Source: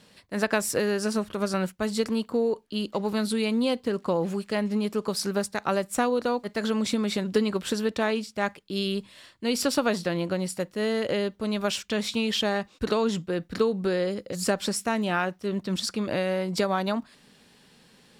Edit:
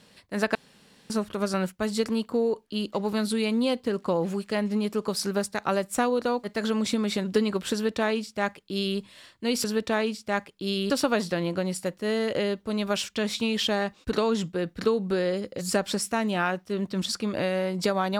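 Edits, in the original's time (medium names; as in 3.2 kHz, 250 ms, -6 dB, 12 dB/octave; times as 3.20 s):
0.55–1.10 s: room tone
7.73–8.99 s: copy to 9.64 s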